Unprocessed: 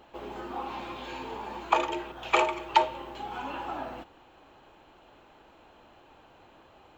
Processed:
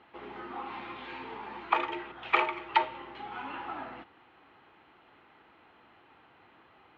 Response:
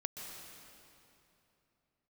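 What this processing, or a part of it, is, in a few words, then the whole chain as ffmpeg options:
guitar cabinet: -af "highpass=91,equalizer=f=580:t=q:w=4:g=-7,equalizer=f=1.3k:t=q:w=4:g=5,equalizer=f=2k:t=q:w=4:g=9,lowpass=f=4k:w=0.5412,lowpass=f=4k:w=1.3066,volume=-4dB"

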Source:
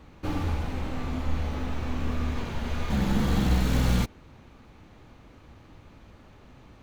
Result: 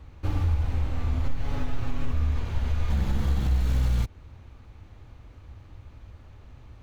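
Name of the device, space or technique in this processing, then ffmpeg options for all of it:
car stereo with a boomy subwoofer: -filter_complex "[0:a]asettb=1/sr,asplit=3[a][b][c];[a]atrim=end=1.234[d];[b]atrim=start=1.23:end=2.12,asetpts=PTS-STARTPTS,afade=t=in:d=0.004:c=qsin,afade=t=out:st=0.886:d=0.004:c=qsin,aecho=1:1:7.3:0.97,atrim=end_sample=39249[e];[c]atrim=start=2.116[f];[d][e]acrossfade=d=0.004:c1=hsin:c2=qsin[g];[g][f]acrossfade=d=0.004:c1=qsin:c2=hsin,lowshelf=f=130:t=q:w=1.5:g=9,alimiter=limit=-13dB:level=0:latency=1:release=188,volume=-3dB"

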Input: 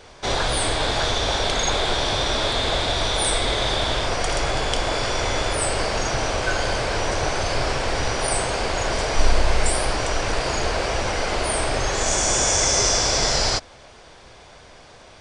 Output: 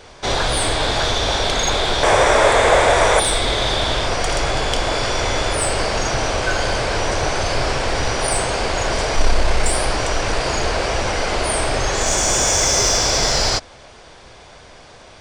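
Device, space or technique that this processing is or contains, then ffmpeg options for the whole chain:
parallel distortion: -filter_complex "[0:a]asplit=2[a][b];[b]asoftclip=type=hard:threshold=-17dB,volume=-6.5dB[c];[a][c]amix=inputs=2:normalize=0,asettb=1/sr,asplit=3[d][e][f];[d]atrim=end=2.034[g];[e]atrim=start=2.03:end=3.2,asetpts=PTS-STARTPTS,afade=t=in:d=0.004:c=qsin,afade=t=out:st=1.166:d=0.004:c=qsin,equalizer=f=250:t=o:w=1:g=-3,equalizer=f=500:t=o:w=1:g=10,equalizer=f=1k:t=o:w=1:g=6,equalizer=f=2k:t=o:w=1:g=9,equalizer=f=4k:t=o:w=1:g=-10,equalizer=f=8k:t=o:w=1:g=10[h];[f]atrim=start=3.196[i];[g][h]acrossfade=d=0.004:c1=hsin:c2=qsin[j];[j][i]acrossfade=d=0.004:c1=qsin:c2=hsin"

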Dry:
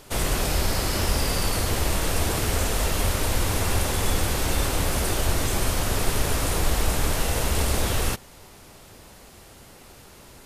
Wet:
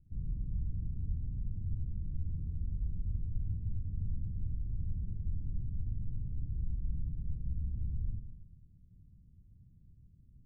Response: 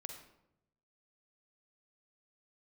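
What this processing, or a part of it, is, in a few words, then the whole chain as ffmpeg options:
club heard from the street: -filter_complex "[0:a]alimiter=limit=-17.5dB:level=0:latency=1,lowpass=f=170:w=0.5412,lowpass=f=170:w=1.3066[a];[1:a]atrim=start_sample=2205[b];[a][b]afir=irnorm=-1:irlink=0,volume=-2.5dB"

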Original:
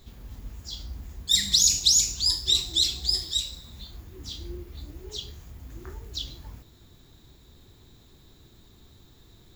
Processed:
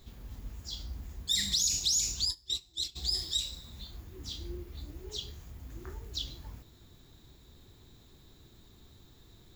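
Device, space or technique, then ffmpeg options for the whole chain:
clipper into limiter: -filter_complex "[0:a]asoftclip=type=hard:threshold=-9.5dB,alimiter=limit=-16.5dB:level=0:latency=1:release=60,asplit=3[a][b][c];[a]afade=t=out:st=2.24:d=0.02[d];[b]agate=range=-23dB:threshold=-24dB:ratio=16:detection=peak,afade=t=in:st=2.24:d=0.02,afade=t=out:st=2.95:d=0.02[e];[c]afade=t=in:st=2.95:d=0.02[f];[d][e][f]amix=inputs=3:normalize=0,volume=-3dB"

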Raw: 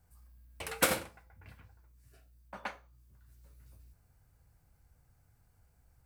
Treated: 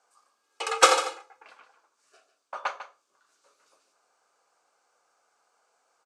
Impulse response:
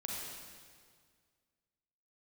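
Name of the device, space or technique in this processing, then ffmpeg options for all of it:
phone speaker on a table: -filter_complex "[0:a]asettb=1/sr,asplit=3[a][b][c];[a]atrim=end=0.434[d];[b]atrim=start=0.43:end=1.43,asetpts=PTS-STARTPTS,afade=t=in:d=0.004:c=qsin,afade=t=out:st=0.996:d=0.004:c=qsin,aecho=1:1:2.4:0.97,atrim=end_sample=44100[e];[c]atrim=start=1.426[f];[d][e]acrossfade=d=0.004:c1=hsin:c2=qsin[g];[g][f]acrossfade=d=0.004:c1=qsin:c2=hsin,highpass=f=440:w=0.5412,highpass=f=440:w=1.3066,equalizer=f=1.2k:t=q:w=4:g=8,equalizer=f=1.9k:t=q:w=4:g=-7,equalizer=f=6.5k:t=q:w=4:g=3,lowpass=f=7.7k:w=0.5412,lowpass=f=7.7k:w=1.3066,aecho=1:1:148:0.251,volume=8dB"

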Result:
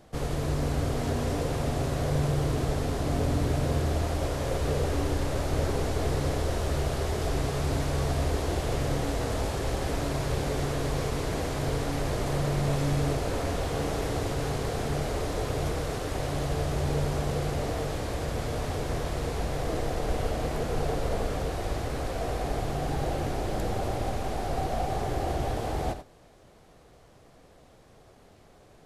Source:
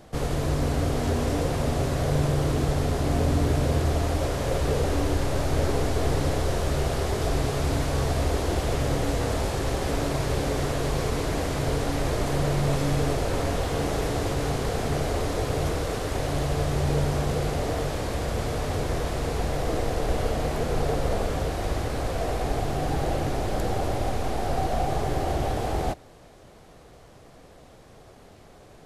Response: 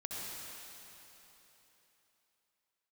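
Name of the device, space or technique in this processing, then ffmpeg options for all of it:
keyed gated reverb: -filter_complex "[0:a]asplit=3[a][b][c];[1:a]atrim=start_sample=2205[d];[b][d]afir=irnorm=-1:irlink=0[e];[c]apad=whole_len=1272638[f];[e][f]sidechaingate=range=-33dB:threshold=-36dB:ratio=16:detection=peak,volume=-8dB[g];[a][g]amix=inputs=2:normalize=0,volume=-5.5dB"

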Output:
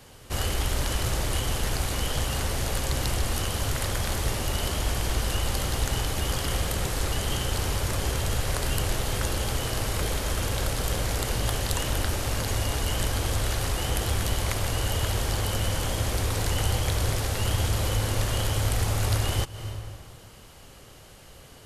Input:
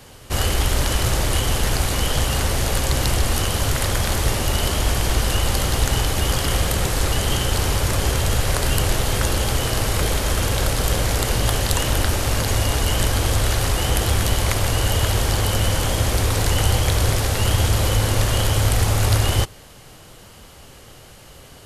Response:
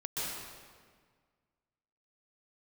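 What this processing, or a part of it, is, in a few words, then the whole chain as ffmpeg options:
ducked reverb: -filter_complex "[0:a]asplit=3[a][b][c];[1:a]atrim=start_sample=2205[d];[b][d]afir=irnorm=-1:irlink=0[e];[c]apad=whole_len=955159[f];[e][f]sidechaincompress=threshold=-34dB:ratio=5:attack=16:release=179,volume=-10dB[g];[a][g]amix=inputs=2:normalize=0,volume=-7.5dB"

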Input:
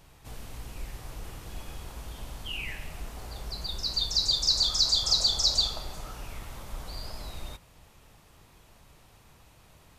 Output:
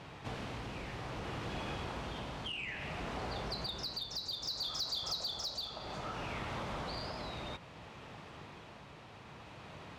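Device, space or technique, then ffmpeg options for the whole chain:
AM radio: -af "highpass=120,lowpass=3.4k,acompressor=threshold=-45dB:ratio=6,asoftclip=type=tanh:threshold=-38dB,tremolo=f=0.61:d=0.29,volume=10dB"

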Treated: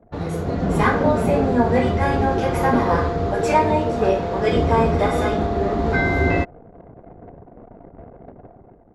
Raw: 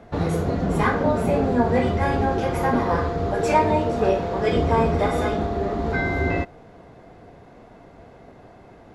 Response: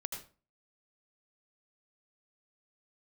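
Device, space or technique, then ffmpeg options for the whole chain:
voice memo with heavy noise removal: -af "anlmdn=0.1,dynaudnorm=f=220:g=5:m=11dB,volume=-4dB"

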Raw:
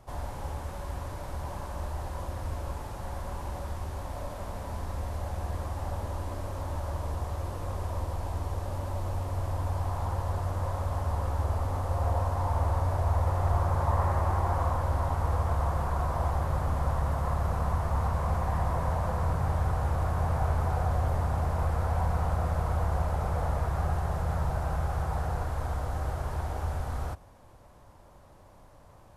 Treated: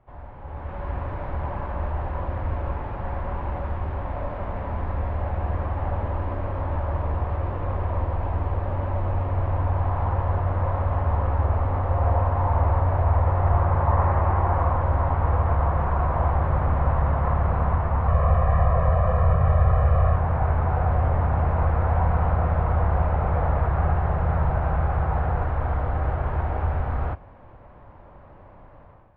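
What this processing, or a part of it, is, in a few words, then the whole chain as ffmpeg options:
action camera in a waterproof case: -filter_complex "[0:a]asettb=1/sr,asplit=3[a][b][c];[a]atrim=end=18.084[d];[b]atrim=start=18.08:end=20.16,asetpts=PTS-STARTPTS,afade=t=in:d=0.004:c=qsin,afade=t=out:st=2.076:d=0.004:c=qsin,aecho=1:1:1.7:0.97,atrim=end_sample=91728[e];[c]atrim=start=20.156[f];[d][e]acrossfade=d=0.004:c1=hsin:c2=qsin[g];[g][f]acrossfade=d=0.004:c1=qsin:c2=hsin,lowpass=f=2.4k:w=0.5412,lowpass=f=2.4k:w=1.3066,dynaudnorm=f=430:g=3:m=13.5dB,volume=-6dB" -ar 22050 -c:a aac -b:a 48k

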